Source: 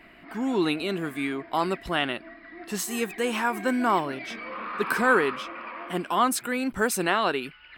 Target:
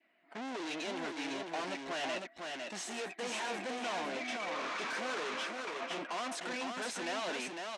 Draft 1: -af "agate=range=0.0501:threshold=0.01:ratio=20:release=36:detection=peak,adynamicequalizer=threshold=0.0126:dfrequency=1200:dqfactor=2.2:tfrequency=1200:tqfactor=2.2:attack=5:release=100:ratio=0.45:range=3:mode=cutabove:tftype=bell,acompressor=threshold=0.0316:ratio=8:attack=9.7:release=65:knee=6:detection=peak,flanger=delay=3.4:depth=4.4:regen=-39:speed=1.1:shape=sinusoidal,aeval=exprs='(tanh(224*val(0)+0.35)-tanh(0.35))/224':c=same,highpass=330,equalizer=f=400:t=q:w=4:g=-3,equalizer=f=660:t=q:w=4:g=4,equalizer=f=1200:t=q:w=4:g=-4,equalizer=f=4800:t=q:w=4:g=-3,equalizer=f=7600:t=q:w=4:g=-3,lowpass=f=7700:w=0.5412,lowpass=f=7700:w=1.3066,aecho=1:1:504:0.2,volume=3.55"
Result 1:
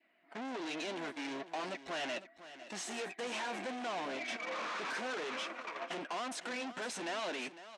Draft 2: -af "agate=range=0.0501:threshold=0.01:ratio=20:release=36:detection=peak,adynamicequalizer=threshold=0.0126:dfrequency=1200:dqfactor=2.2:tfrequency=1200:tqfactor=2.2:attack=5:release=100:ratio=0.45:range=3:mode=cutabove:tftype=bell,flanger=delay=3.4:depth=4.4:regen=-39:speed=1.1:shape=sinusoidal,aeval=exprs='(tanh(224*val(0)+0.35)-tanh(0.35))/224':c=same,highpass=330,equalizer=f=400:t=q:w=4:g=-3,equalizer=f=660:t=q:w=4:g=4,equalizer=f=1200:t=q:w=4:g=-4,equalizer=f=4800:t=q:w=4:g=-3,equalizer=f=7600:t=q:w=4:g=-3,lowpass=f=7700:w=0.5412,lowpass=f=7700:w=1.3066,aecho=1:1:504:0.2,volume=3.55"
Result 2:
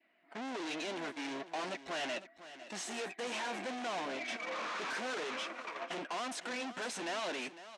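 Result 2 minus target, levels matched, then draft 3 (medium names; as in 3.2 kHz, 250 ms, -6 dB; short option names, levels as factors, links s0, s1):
echo-to-direct -10 dB
-af "agate=range=0.0501:threshold=0.01:ratio=20:release=36:detection=peak,adynamicequalizer=threshold=0.0126:dfrequency=1200:dqfactor=2.2:tfrequency=1200:tqfactor=2.2:attack=5:release=100:ratio=0.45:range=3:mode=cutabove:tftype=bell,flanger=delay=3.4:depth=4.4:regen=-39:speed=1.1:shape=sinusoidal,aeval=exprs='(tanh(224*val(0)+0.35)-tanh(0.35))/224':c=same,highpass=330,equalizer=f=400:t=q:w=4:g=-3,equalizer=f=660:t=q:w=4:g=4,equalizer=f=1200:t=q:w=4:g=-4,equalizer=f=4800:t=q:w=4:g=-3,equalizer=f=7600:t=q:w=4:g=-3,lowpass=f=7700:w=0.5412,lowpass=f=7700:w=1.3066,aecho=1:1:504:0.631,volume=3.55"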